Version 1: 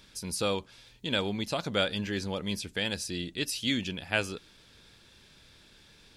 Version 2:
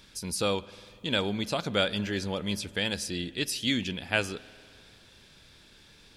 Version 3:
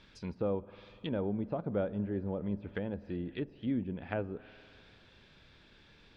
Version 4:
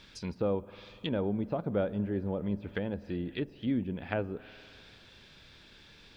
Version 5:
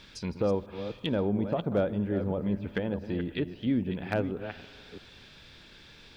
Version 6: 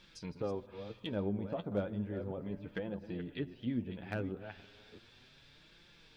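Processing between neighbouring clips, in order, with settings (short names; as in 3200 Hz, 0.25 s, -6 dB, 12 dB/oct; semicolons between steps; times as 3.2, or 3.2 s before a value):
spring tank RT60 2.5 s, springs 49 ms, chirp 20 ms, DRR 18.5 dB; gain +1.5 dB
treble ducked by the level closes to 670 Hz, closed at -28 dBFS; LPF 3100 Hz 12 dB/oct; gain -2.5 dB
high shelf 4100 Hz +11 dB; gain +2.5 dB
reverse delay 0.332 s, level -10 dB; hard clip -21 dBFS, distortion -30 dB; gain +3 dB
flange 0.34 Hz, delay 5.6 ms, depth 5.3 ms, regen +37%; gain -5 dB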